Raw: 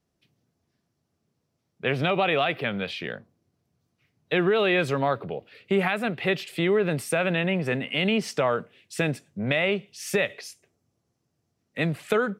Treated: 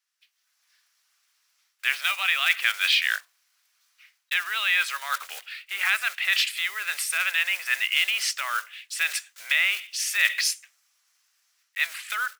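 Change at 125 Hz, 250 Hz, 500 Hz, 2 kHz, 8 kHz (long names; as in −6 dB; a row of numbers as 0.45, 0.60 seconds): below −40 dB, below −40 dB, −27.5 dB, +6.0 dB, +10.5 dB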